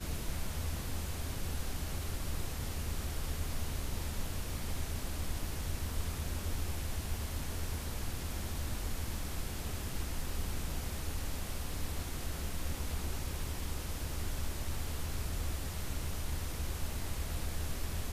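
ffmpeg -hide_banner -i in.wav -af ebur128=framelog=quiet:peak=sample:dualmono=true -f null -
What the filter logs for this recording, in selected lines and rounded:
Integrated loudness:
  I:         -36.5 LUFS
  Threshold: -46.5 LUFS
Loudness range:
  LRA:         0.7 LU
  Threshold: -56.5 LUFS
  LRA low:   -36.9 LUFS
  LRA high:  -36.1 LUFS
Sample peak:
  Peak:      -22.4 dBFS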